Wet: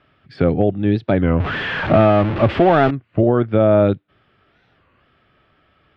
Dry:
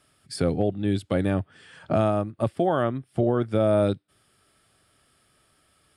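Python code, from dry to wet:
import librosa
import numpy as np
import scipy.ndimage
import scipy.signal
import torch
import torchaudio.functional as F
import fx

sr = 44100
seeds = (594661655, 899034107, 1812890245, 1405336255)

y = fx.zero_step(x, sr, step_db=-24.0, at=(1.4, 2.93))
y = scipy.signal.sosfilt(scipy.signal.butter(4, 3000.0, 'lowpass', fs=sr, output='sos'), y)
y = fx.record_warp(y, sr, rpm=33.33, depth_cents=250.0)
y = F.gain(torch.from_numpy(y), 7.5).numpy()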